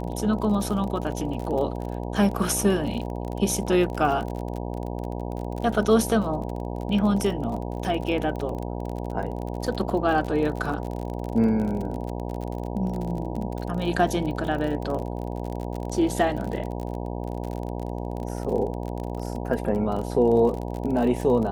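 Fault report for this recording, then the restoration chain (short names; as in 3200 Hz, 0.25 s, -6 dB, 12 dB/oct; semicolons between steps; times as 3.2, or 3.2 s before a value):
buzz 60 Hz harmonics 16 -31 dBFS
crackle 37/s -30 dBFS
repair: de-click; de-hum 60 Hz, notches 16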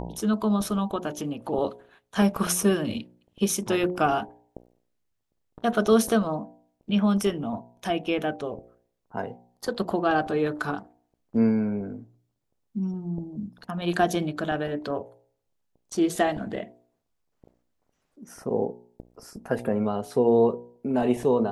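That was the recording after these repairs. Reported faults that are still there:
none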